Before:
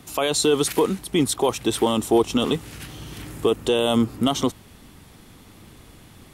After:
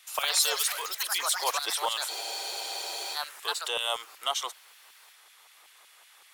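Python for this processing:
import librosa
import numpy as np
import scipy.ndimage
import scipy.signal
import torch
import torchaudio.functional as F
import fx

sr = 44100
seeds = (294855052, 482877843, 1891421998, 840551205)

y = scipy.signal.sosfilt(scipy.signal.butter(4, 430.0, 'highpass', fs=sr, output='sos'), x)
y = fx.filter_lfo_highpass(y, sr, shape='saw_down', hz=5.3, low_hz=770.0, high_hz=2300.0, q=1.0)
y = fx.echo_pitch(y, sr, ms=94, semitones=4, count=3, db_per_echo=-3.0)
y = fx.spec_freeze(y, sr, seeds[0], at_s=2.11, hold_s=1.03)
y = y * 10.0 ** (-3.0 / 20.0)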